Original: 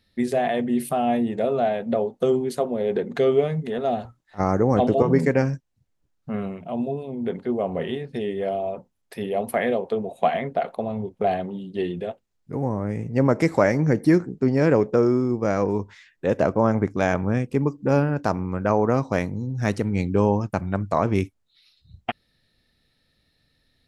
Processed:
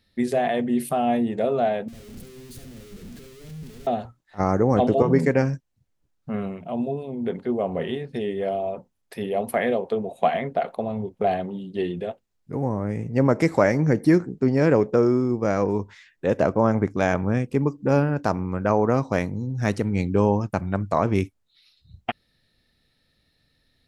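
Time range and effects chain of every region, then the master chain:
1.88–3.87 s: one-bit comparator + amplifier tone stack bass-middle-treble 10-0-1 + flutter echo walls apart 12 m, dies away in 0.42 s
whole clip: none

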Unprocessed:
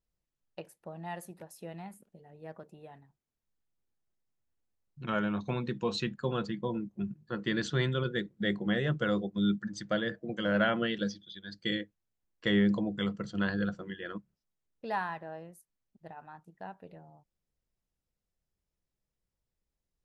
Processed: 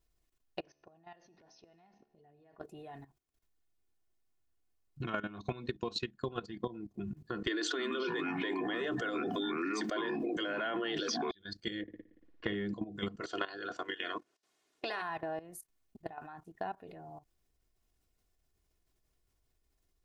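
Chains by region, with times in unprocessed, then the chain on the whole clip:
0.60–2.60 s: Chebyshev low-pass 6.2 kHz, order 10 + compression 4:1, threshold -53 dBFS + feedback comb 73 Hz, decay 1.1 s
5.33–6.95 s: peaking EQ 4.6 kHz +5 dB 0.61 oct + transient shaper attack +4 dB, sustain -4 dB
7.47–11.31 s: steep high-pass 260 Hz 96 dB/octave + ever faster or slower copies 299 ms, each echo -6 st, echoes 2, each echo -6 dB + level flattener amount 100%
11.82–12.55 s: low-pass 3 kHz + flutter echo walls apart 9.9 m, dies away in 0.79 s
13.20–15.01 s: spectral peaks clipped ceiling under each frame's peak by 18 dB + band-pass 330–7900 Hz
whole clip: level held to a coarse grid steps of 15 dB; comb 2.8 ms, depth 49%; compression 6:1, threshold -46 dBFS; trim +11.5 dB

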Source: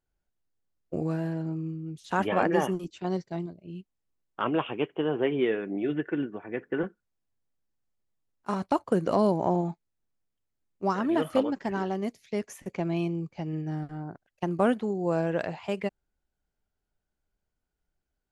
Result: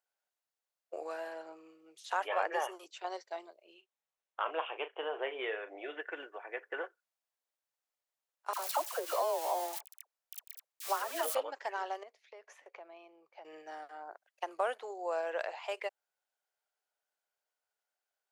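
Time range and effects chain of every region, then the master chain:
3.74–6.00 s: distance through air 61 m + band-stop 4.7 kHz, Q 7.1 + doubling 37 ms -11.5 dB
8.53–11.35 s: zero-crossing glitches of -25.5 dBFS + phase dispersion lows, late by 70 ms, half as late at 1 kHz
12.03–13.45 s: compression, threshold -38 dBFS + tape spacing loss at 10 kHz 24 dB
whole clip: inverse Chebyshev high-pass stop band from 210 Hz, stop band 50 dB; compression 1.5:1, threshold -37 dBFS

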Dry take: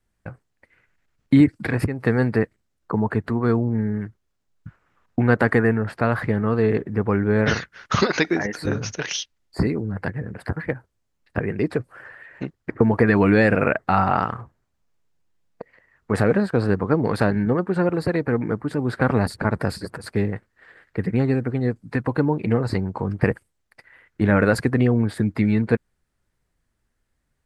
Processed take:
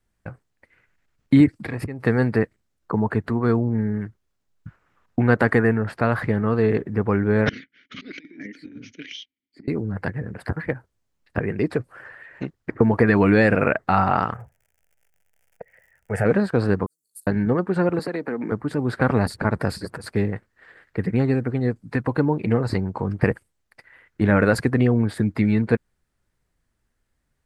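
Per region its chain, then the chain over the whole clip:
1.52–2.00 s: band-stop 1.5 kHz, Q 9.1 + compression 1.5:1, threshold -35 dBFS
7.49–9.68 s: vowel filter i + compressor with a negative ratio -37 dBFS, ratio -0.5
14.33–16.24 s: crackle 93 per s -46 dBFS + static phaser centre 1.1 kHz, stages 6
16.86–17.27 s: inverse Chebyshev high-pass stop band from 2.4 kHz, stop band 70 dB + tilt EQ +2 dB/octave
17.99–18.52 s: high-pass 190 Hz 24 dB/octave + compression 4:1, threshold -23 dBFS
whole clip: none

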